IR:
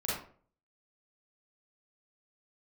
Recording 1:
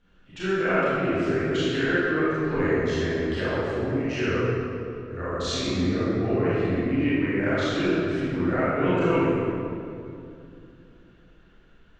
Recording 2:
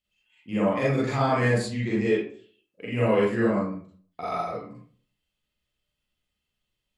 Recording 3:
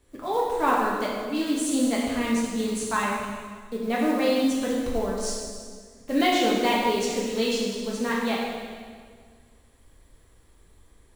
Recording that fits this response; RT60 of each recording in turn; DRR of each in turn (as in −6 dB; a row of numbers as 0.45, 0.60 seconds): 2; 2.6, 0.45, 1.8 seconds; −11.5, −7.5, −5.5 decibels